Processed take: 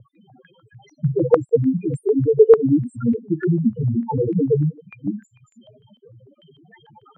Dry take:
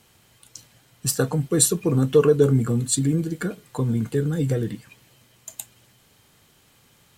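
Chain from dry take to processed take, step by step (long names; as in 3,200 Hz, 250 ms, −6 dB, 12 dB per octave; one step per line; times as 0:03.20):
slices reordered back to front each 174 ms, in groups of 3
high-pass filter 310 Hz 6 dB per octave
four-comb reverb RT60 0.35 s, combs from 30 ms, DRR 17.5 dB
downward compressor 4 to 1, threshold −37 dBFS, peak gain reduction 19.5 dB
flanger 1.3 Hz, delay 0.3 ms, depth 7.8 ms, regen +1%
spectral peaks only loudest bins 2
boost into a limiter +36 dB
low-pass on a step sequencer 6.7 Hz 540–2,300 Hz
level −10 dB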